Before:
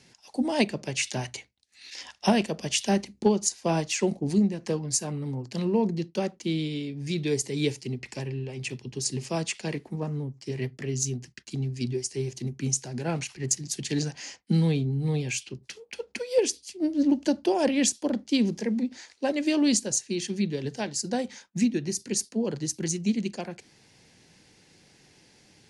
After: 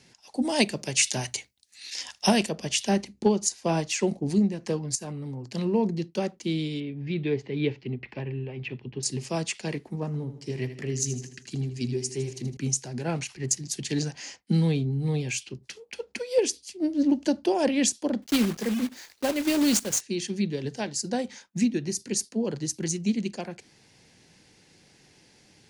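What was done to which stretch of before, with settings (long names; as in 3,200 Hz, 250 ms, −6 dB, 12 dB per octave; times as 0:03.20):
0:00.42–0:02.49: high-shelf EQ 4,600 Hz +12 dB
0:04.95–0:05.49: downward compressor 12 to 1, threshold −31 dBFS
0:06.80–0:09.03: low-pass filter 3,100 Hz 24 dB per octave
0:10.06–0:12.57: repeating echo 79 ms, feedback 52%, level −11.5 dB
0:18.22–0:20.03: one scale factor per block 3 bits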